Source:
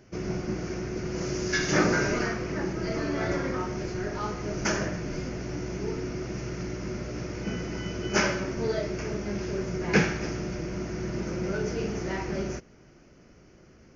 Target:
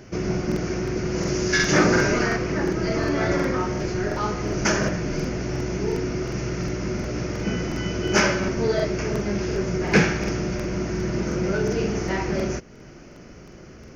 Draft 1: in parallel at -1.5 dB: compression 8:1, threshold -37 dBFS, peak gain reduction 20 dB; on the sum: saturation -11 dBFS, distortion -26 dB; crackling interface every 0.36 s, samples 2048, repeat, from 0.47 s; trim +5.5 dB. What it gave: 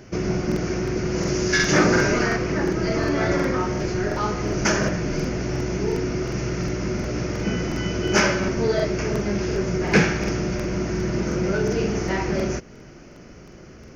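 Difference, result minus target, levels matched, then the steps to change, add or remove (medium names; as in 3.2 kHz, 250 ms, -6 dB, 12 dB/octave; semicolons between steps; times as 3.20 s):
compression: peak gain reduction -7.5 dB
change: compression 8:1, threshold -45.5 dBFS, peak gain reduction 27.5 dB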